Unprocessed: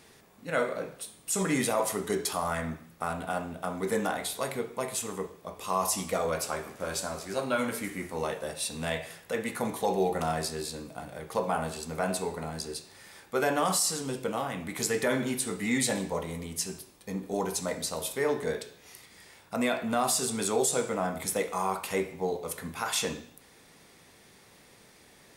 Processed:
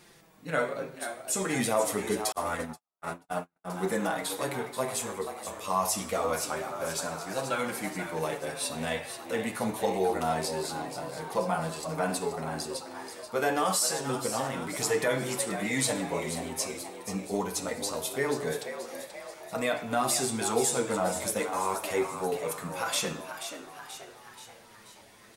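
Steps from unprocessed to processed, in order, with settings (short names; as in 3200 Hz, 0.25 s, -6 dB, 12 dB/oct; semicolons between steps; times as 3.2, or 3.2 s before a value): flange 0.26 Hz, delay 5.6 ms, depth 4 ms, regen +6%; frequency-shifting echo 0.482 s, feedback 55%, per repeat +100 Hz, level -9.5 dB; 2.32–3.7 gate -33 dBFS, range -60 dB; gain +3 dB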